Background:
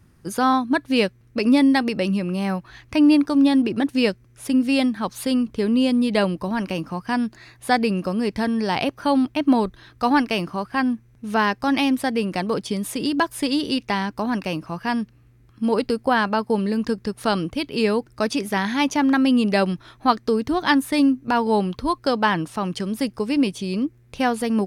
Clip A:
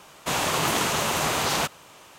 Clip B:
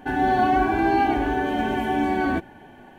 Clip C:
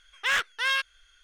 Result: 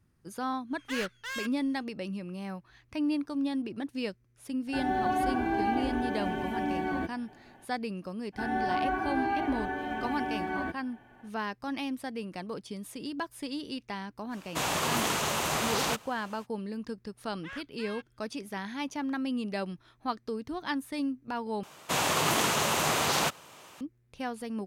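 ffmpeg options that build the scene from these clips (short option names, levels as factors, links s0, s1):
-filter_complex "[3:a]asplit=2[s0][s1];[2:a]asplit=2[s2][s3];[1:a]asplit=2[s4][s5];[0:a]volume=0.188[s6];[s0]asoftclip=type=hard:threshold=0.0398[s7];[s3]equalizer=f=1400:t=o:w=1.5:g=6[s8];[s1]lowpass=f=1700:p=1[s9];[s5]highpass=82[s10];[s6]asplit=2[s11][s12];[s11]atrim=end=21.634[s13];[s10]atrim=end=2.18,asetpts=PTS-STARTPTS,volume=0.75[s14];[s12]atrim=start=23.806[s15];[s7]atrim=end=1.23,asetpts=PTS-STARTPTS,volume=0.447,afade=t=in:d=0.1,afade=t=out:st=1.13:d=0.1,adelay=650[s16];[s2]atrim=end=2.98,asetpts=PTS-STARTPTS,volume=0.355,afade=t=in:d=0.004:c=hsin,afade=t=out:st=2.976:d=0.004:c=hsin,adelay=4670[s17];[s8]atrim=end=2.98,asetpts=PTS-STARTPTS,volume=0.237,afade=t=in:d=0.02,afade=t=out:st=2.96:d=0.02,adelay=8320[s18];[s4]atrim=end=2.18,asetpts=PTS-STARTPTS,volume=0.562,afade=t=in:d=0.05,afade=t=out:st=2.13:d=0.05,adelay=14290[s19];[s9]atrim=end=1.23,asetpts=PTS-STARTPTS,volume=0.158,afade=t=in:d=0.004:c=hsin,afade=t=out:st=1.226:d=0.004:c=hsin,adelay=17200[s20];[s13][s14]acrossfade=d=0.004:c1=hsin:c2=hsin[s21];[s21][s15]acrossfade=d=0.004:c1=hsin:c2=hsin[s22];[s22][s16][s17][s18][s19][s20]amix=inputs=6:normalize=0"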